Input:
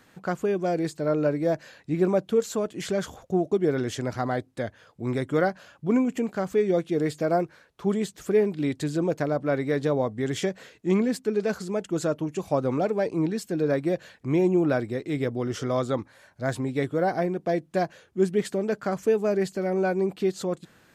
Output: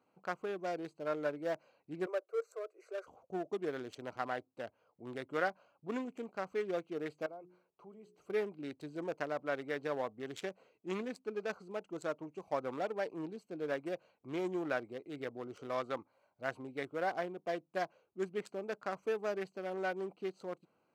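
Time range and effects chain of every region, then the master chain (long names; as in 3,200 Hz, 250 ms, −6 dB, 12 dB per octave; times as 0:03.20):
0:02.06–0:03.07: Butterworth high-pass 370 Hz 48 dB per octave + phaser with its sweep stopped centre 870 Hz, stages 6
0:07.26–0:08.30: mains-hum notches 60/120/180/240/300/360/420 Hz + downward compressor 2.5 to 1, threshold −40 dBFS
whole clip: adaptive Wiener filter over 25 samples; high-pass filter 940 Hz 6 dB per octave; dynamic equaliser 1,400 Hz, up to +4 dB, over −43 dBFS, Q 0.78; level −6 dB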